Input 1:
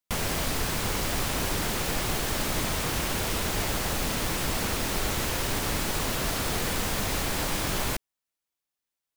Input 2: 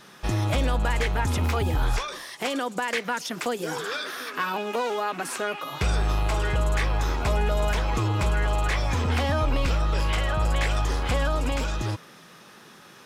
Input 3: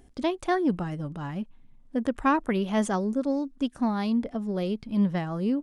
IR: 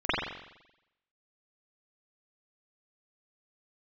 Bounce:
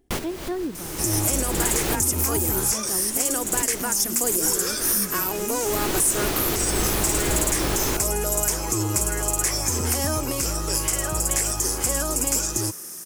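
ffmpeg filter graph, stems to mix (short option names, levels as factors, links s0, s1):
-filter_complex "[0:a]volume=1.26[s0];[1:a]highpass=f=56:w=0.5412,highpass=f=56:w=1.3066,aexciter=amount=12.5:drive=8.5:freq=5700,adelay=750,volume=0.75[s1];[2:a]volume=0.282,asplit=2[s2][s3];[s3]apad=whole_len=408534[s4];[s0][s4]sidechaincompress=threshold=0.00282:ratio=6:attack=12:release=224[s5];[s5][s1][s2]amix=inputs=3:normalize=0,equalizer=f=350:w=2.7:g=10.5,alimiter=limit=0.299:level=0:latency=1:release=94"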